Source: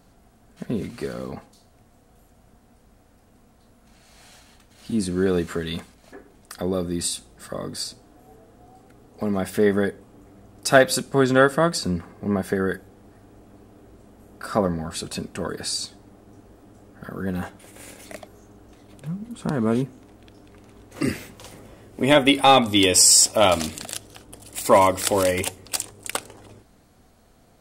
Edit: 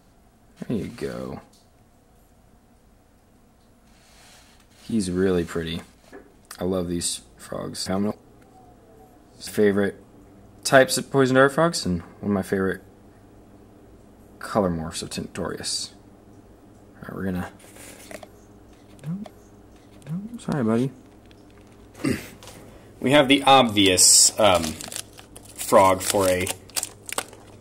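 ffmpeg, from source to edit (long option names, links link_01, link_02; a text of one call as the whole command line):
ffmpeg -i in.wav -filter_complex "[0:a]asplit=4[link_01][link_02][link_03][link_04];[link_01]atrim=end=7.862[link_05];[link_02]atrim=start=7.858:end=9.472,asetpts=PTS-STARTPTS,areverse[link_06];[link_03]atrim=start=9.468:end=19.242[link_07];[link_04]atrim=start=18.208[link_08];[link_05][link_06]acrossfade=duration=0.004:curve1=hsin:curve2=hsin[link_09];[link_09][link_07]acrossfade=duration=0.004:curve1=hsin:curve2=hsin[link_10];[link_10][link_08]acrossfade=duration=0.004:curve1=hsin:curve2=hsin" out.wav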